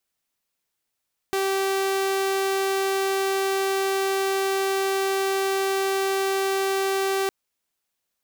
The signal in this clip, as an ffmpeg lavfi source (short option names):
-f lavfi -i "aevalsrc='0.112*(2*mod(388*t,1)-1)':d=5.96:s=44100"